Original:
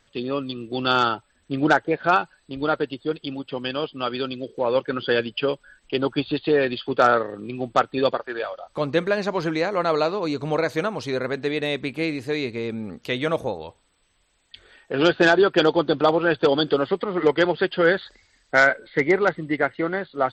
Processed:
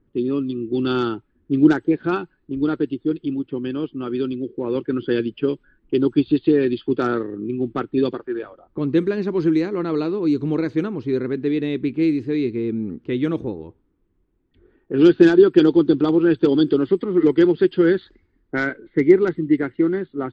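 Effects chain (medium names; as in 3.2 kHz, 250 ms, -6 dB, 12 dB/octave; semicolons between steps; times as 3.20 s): resonant low shelf 460 Hz +9.5 dB, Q 3; level-controlled noise filter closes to 970 Hz, open at -6 dBFS; trim -6.5 dB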